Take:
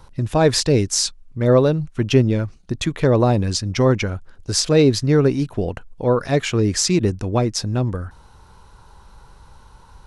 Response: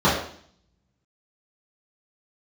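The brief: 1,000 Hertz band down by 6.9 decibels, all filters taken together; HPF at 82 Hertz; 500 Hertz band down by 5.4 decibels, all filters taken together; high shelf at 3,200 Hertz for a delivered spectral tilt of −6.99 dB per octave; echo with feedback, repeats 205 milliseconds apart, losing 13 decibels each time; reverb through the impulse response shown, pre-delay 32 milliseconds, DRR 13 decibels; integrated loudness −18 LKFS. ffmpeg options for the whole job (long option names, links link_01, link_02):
-filter_complex "[0:a]highpass=82,equalizer=frequency=500:width_type=o:gain=-5,equalizer=frequency=1000:width_type=o:gain=-6.5,highshelf=frequency=3200:gain=-8.5,aecho=1:1:205|410|615:0.224|0.0493|0.0108,asplit=2[link_01][link_02];[1:a]atrim=start_sample=2205,adelay=32[link_03];[link_02][link_03]afir=irnorm=-1:irlink=0,volume=-34.5dB[link_04];[link_01][link_04]amix=inputs=2:normalize=0,volume=3.5dB"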